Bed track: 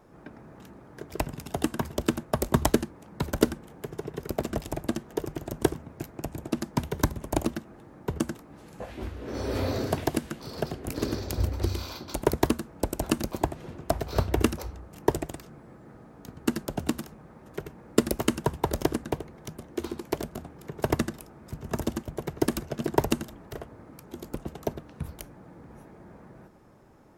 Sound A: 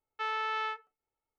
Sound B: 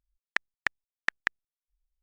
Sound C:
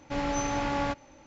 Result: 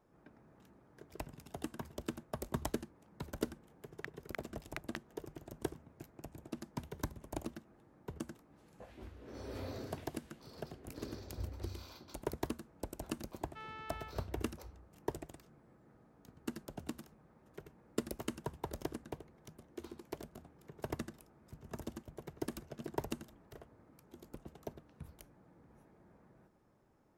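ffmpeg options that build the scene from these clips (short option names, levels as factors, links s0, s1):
-filter_complex "[0:a]volume=0.178[s0];[2:a]aeval=exprs='val(0)*sgn(sin(2*PI*170*n/s))':c=same,atrim=end=2.02,asetpts=PTS-STARTPTS,volume=0.133,afade=t=in:d=0.004:c=hsin,afade=t=out:st=2.016:d=0.004:c=hsin,adelay=3680[s1];[1:a]atrim=end=1.38,asetpts=PTS-STARTPTS,volume=0.168,afade=t=in:d=0.004:c=hsin,afade=t=out:st=1.376:d=0.004:c=hsin,adelay=13360[s2];[s0][s1][s2]amix=inputs=3:normalize=0"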